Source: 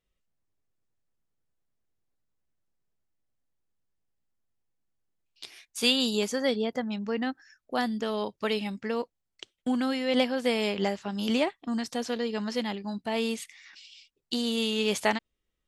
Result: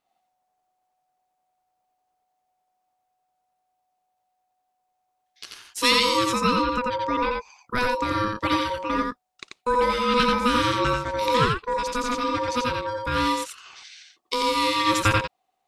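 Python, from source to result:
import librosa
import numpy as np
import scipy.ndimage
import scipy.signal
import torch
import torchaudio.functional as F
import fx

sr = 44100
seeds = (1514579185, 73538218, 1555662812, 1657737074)

y = x * np.sin(2.0 * np.pi * 740.0 * np.arange(len(x)) / sr)
y = y + 10.0 ** (-3.0 / 20.0) * np.pad(y, (int(87 * sr / 1000.0), 0))[:len(y)]
y = F.gain(torch.from_numpy(y), 7.0).numpy()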